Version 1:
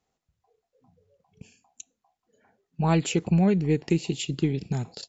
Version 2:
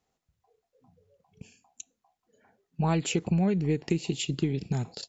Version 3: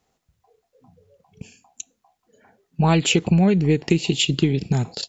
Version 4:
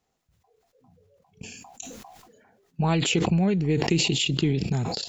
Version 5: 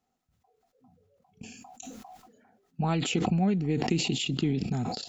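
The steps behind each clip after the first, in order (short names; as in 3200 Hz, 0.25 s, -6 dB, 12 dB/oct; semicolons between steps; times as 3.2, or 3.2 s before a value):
compressor 3:1, threshold -23 dBFS, peak gain reduction 5 dB
dynamic EQ 3200 Hz, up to +6 dB, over -48 dBFS, Q 1.5; gain +8.5 dB
sustainer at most 35 dB/s; gain -6 dB
small resonant body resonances 240/740/1300 Hz, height 9 dB, ringing for 40 ms; gain -6.5 dB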